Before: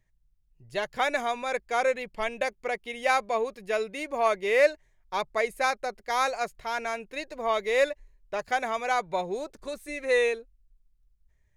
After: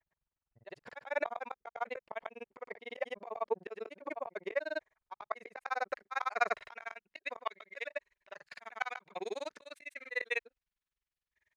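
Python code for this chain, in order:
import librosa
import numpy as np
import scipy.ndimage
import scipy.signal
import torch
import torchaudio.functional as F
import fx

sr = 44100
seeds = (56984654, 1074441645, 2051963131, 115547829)

y = fx.filter_sweep_bandpass(x, sr, from_hz=950.0, to_hz=2100.0, start_s=4.46, end_s=7.68, q=1.0)
y = fx.granulator(y, sr, seeds[0], grain_ms=45.0, per_s=20.0, spray_ms=100.0, spread_st=0)
y = fx.auto_swell(y, sr, attack_ms=243.0)
y = y * 10.0 ** (8.5 / 20.0)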